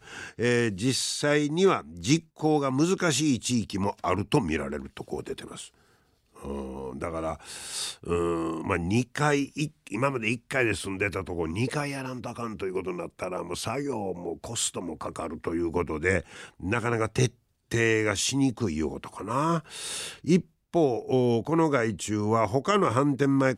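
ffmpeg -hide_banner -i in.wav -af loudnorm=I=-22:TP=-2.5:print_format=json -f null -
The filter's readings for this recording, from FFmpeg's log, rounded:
"input_i" : "-27.1",
"input_tp" : "-8.5",
"input_lra" : "7.4",
"input_thresh" : "-37.4",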